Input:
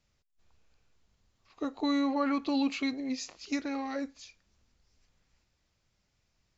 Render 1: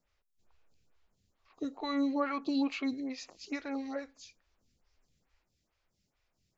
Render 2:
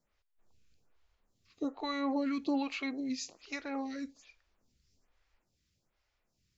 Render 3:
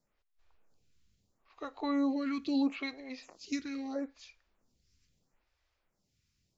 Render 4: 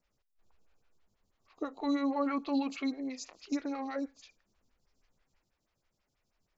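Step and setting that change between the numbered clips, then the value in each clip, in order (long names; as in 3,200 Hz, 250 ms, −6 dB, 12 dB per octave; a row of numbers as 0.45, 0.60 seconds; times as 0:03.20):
phaser with staggered stages, speed: 2.3, 1.2, 0.76, 6.2 Hertz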